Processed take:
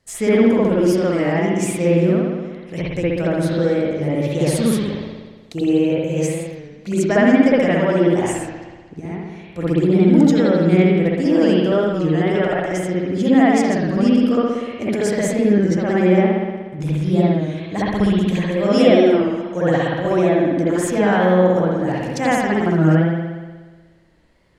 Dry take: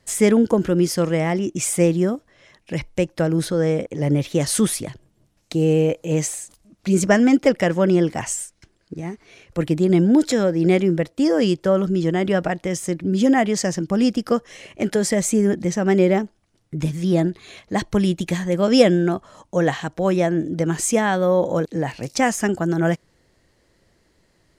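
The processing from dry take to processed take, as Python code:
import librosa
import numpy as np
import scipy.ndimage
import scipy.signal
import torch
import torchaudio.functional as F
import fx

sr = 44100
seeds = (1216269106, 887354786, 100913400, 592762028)

y = fx.rev_spring(x, sr, rt60_s=1.4, pass_ms=(60,), chirp_ms=25, drr_db=-8.5)
y = fx.record_warp(y, sr, rpm=33.33, depth_cents=100.0)
y = F.gain(torch.from_numpy(y), -6.0).numpy()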